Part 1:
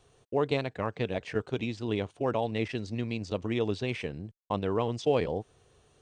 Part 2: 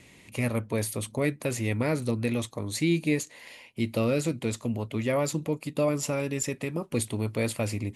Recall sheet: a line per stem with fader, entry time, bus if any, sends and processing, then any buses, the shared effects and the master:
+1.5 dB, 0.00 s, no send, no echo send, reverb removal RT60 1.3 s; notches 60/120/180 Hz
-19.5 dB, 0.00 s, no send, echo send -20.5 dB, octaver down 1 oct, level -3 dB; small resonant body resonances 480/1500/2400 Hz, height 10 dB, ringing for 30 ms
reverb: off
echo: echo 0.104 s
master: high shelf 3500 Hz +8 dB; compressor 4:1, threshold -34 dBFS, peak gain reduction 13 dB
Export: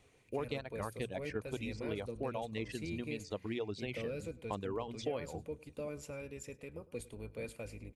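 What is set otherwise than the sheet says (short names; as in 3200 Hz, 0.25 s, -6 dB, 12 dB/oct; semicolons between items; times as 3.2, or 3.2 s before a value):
stem 1 +1.5 dB -> -5.5 dB; master: missing high shelf 3500 Hz +8 dB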